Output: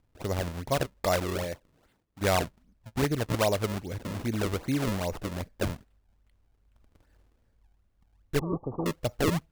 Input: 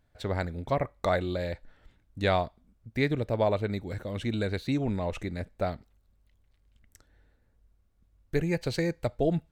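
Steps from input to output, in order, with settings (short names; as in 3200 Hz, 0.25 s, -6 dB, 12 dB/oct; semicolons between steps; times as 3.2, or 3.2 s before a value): 1.43–2.2 HPF 130 Hz -> 380 Hz 6 dB/oct; decimation with a swept rate 33×, swing 160% 2.5 Hz; 8.39–8.86 rippled Chebyshev low-pass 1200 Hz, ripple 6 dB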